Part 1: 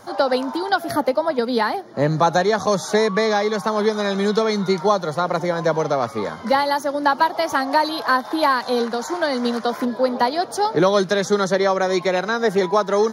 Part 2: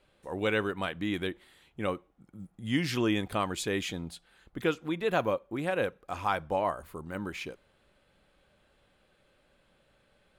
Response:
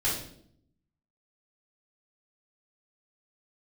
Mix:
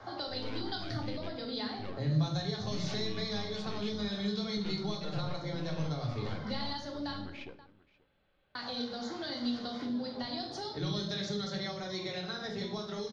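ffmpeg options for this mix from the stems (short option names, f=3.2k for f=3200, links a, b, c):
-filter_complex "[0:a]acrossover=split=170|3000[a][b][c];[b]acompressor=threshold=-32dB:ratio=2.5[d];[a][d][c]amix=inputs=3:normalize=0,volume=-9.5dB,asplit=3[e][f][g];[e]atrim=end=7.19,asetpts=PTS-STARTPTS,afade=t=out:st=7.186:d=0.004:c=hsin[h];[f]atrim=start=7.19:end=8.55,asetpts=PTS-STARTPTS,volume=0[i];[g]atrim=start=8.55,asetpts=PTS-STARTPTS,afade=t=in:d=0.004:c=hsin[j];[h][i][j]concat=n=3:v=0:a=1,asplit=3[k][l][m];[l]volume=-4.5dB[n];[m]volume=-22dB[o];[1:a]aeval=exprs='(tanh(39.8*val(0)+0.7)-tanh(0.7))/39.8':c=same,volume=-4dB,asplit=3[p][q][r];[q]volume=-20.5dB[s];[r]volume=-23dB[t];[2:a]atrim=start_sample=2205[u];[n][s]amix=inputs=2:normalize=0[v];[v][u]afir=irnorm=-1:irlink=0[w];[o][t]amix=inputs=2:normalize=0,aecho=0:1:531:1[x];[k][p][w][x]amix=inputs=4:normalize=0,lowpass=f=4.4k:w=0.5412,lowpass=f=4.4k:w=1.3066,acrossover=split=210|3000[y][z][aa];[z]acompressor=threshold=-40dB:ratio=6[ab];[y][ab][aa]amix=inputs=3:normalize=0"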